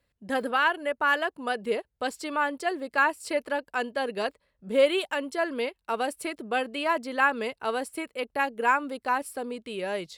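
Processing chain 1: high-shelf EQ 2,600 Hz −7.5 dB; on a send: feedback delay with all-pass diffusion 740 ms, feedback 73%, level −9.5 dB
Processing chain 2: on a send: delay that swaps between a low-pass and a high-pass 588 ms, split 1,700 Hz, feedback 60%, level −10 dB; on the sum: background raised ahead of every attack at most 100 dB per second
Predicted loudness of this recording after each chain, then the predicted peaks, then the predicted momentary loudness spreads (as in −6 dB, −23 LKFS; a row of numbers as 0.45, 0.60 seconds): −28.5, −27.0 LKFS; −11.0, −9.5 dBFS; 7, 8 LU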